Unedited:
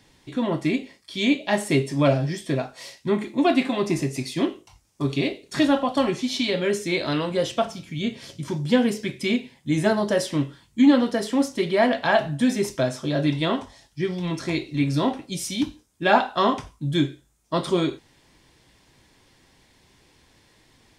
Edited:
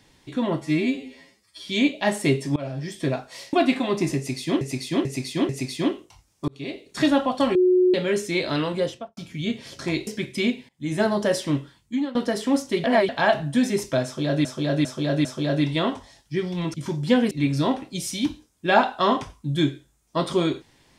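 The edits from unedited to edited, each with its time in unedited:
0.61–1.15 s: stretch 2×
2.02–2.49 s: fade in, from -23 dB
2.99–3.42 s: delete
4.06–4.50 s: loop, 4 plays
5.05–5.54 s: fade in
6.12–6.51 s: bleep 365 Hz -14 dBFS
7.31–7.74 s: studio fade out
8.36–8.93 s: swap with 14.40–14.68 s
9.55–9.94 s: fade in, from -20 dB
10.44–11.01 s: fade out, to -21.5 dB
11.70–11.95 s: reverse
12.91–13.31 s: loop, 4 plays

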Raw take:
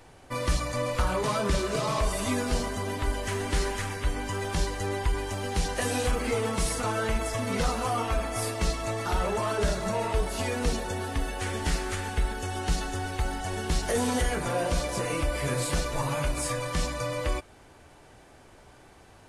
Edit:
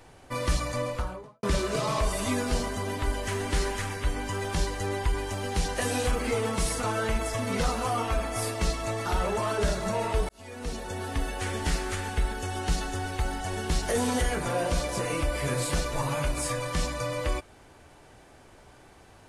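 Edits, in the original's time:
0.68–1.43 s: studio fade out
10.29–11.18 s: fade in

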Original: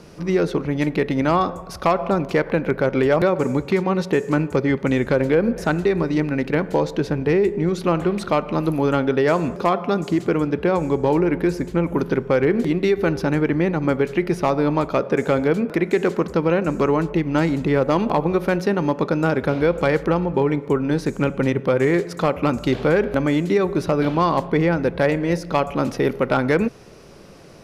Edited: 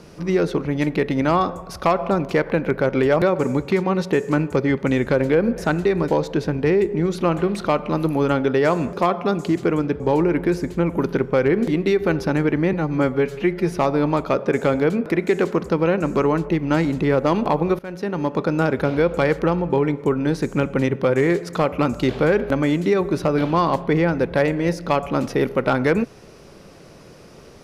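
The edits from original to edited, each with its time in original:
6.08–6.71 s: delete
10.63–10.97 s: delete
13.70–14.36 s: stretch 1.5×
18.43–19.28 s: fade in equal-power, from -20.5 dB

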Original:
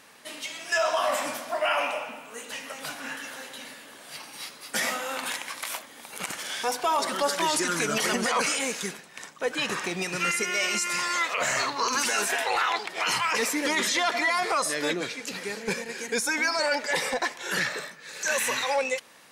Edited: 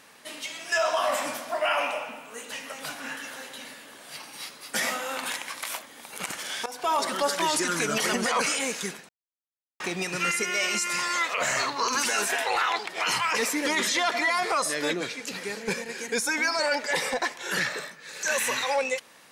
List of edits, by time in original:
6.66–6.91 s: fade in, from -18.5 dB
9.09–9.80 s: mute

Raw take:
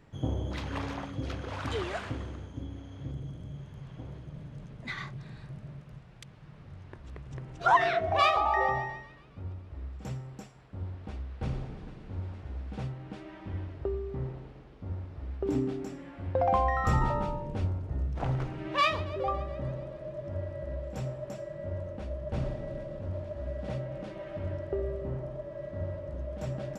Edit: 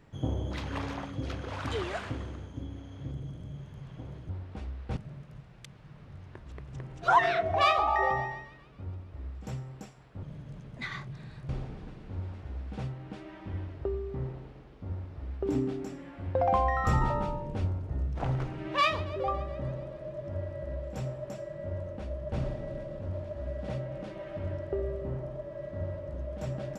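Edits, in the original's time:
4.29–5.55 s: swap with 10.81–11.49 s

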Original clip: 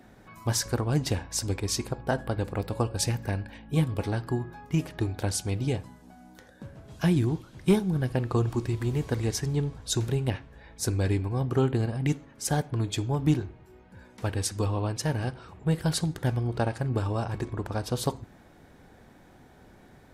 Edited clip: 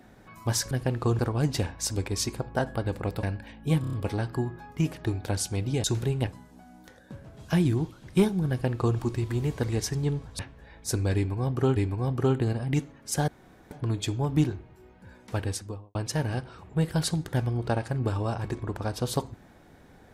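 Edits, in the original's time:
2.75–3.29 s: delete
3.87 s: stutter 0.03 s, 5 plays
8.00–8.48 s: copy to 0.71 s
9.90–10.33 s: move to 5.78 s
11.09–11.70 s: loop, 2 plays
12.61 s: insert room tone 0.43 s
14.29–14.85 s: studio fade out

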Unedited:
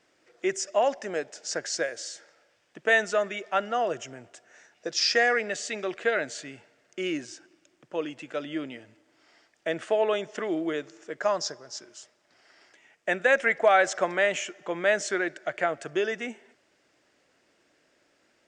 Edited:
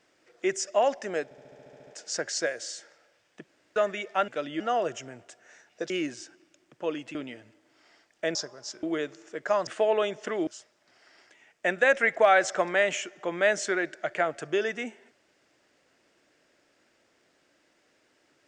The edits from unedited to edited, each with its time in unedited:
1.24 s: stutter 0.07 s, 10 plays
2.85–3.13 s: room tone
4.95–7.01 s: delete
8.26–8.58 s: move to 3.65 s
9.78–10.58 s: swap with 11.42–11.90 s

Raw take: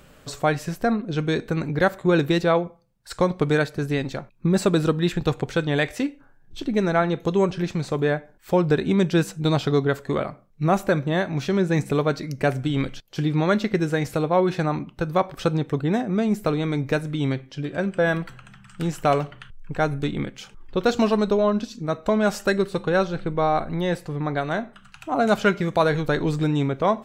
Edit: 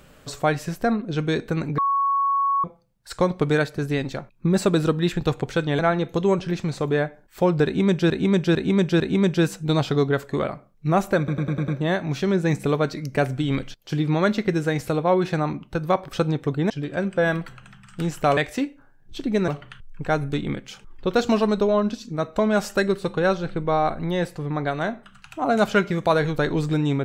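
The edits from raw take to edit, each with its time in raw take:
1.78–2.64 s: bleep 1.11 kHz -18 dBFS
5.79–6.90 s: move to 19.18 s
8.76–9.21 s: loop, 4 plays
10.94 s: stutter 0.10 s, 6 plays
15.96–17.51 s: delete

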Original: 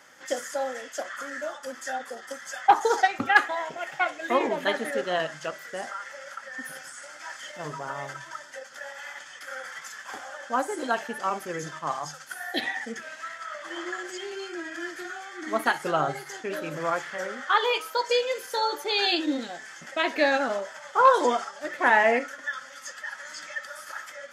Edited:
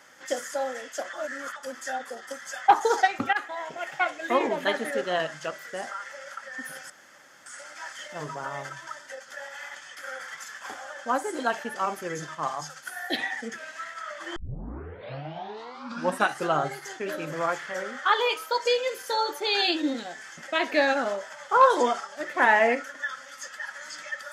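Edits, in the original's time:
1.13–1.56 s: reverse
3.33–3.81 s: fade in, from -14 dB
6.90 s: insert room tone 0.56 s
13.80 s: tape start 2.12 s

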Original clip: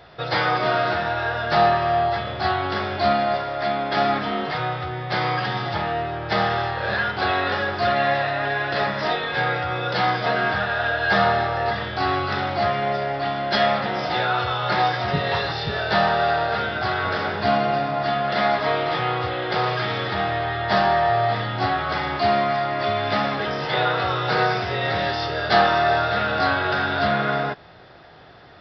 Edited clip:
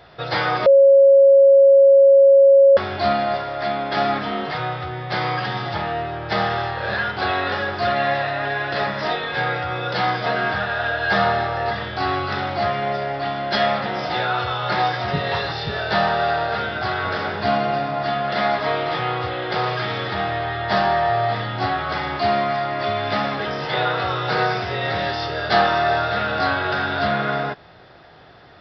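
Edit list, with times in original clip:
0.66–2.77 s: bleep 550 Hz -7.5 dBFS

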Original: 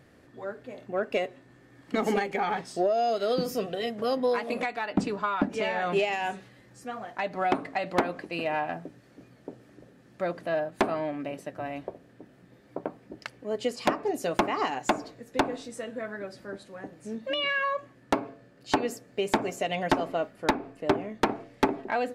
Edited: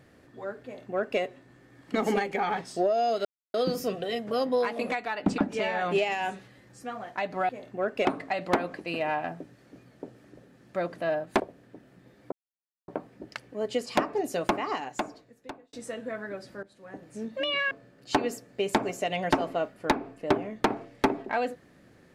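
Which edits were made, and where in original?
0.64–1.20 s: copy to 7.50 s
3.25 s: insert silence 0.29 s
5.09–5.39 s: delete
10.85–11.86 s: delete
12.78 s: insert silence 0.56 s
14.19–15.63 s: fade out linear
16.53–16.95 s: fade in, from -18.5 dB
17.61–18.30 s: delete

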